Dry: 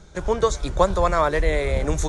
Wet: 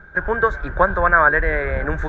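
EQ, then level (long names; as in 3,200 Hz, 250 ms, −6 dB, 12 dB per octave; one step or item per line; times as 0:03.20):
low-pass with resonance 1,600 Hz, resonance Q 14
−1.0 dB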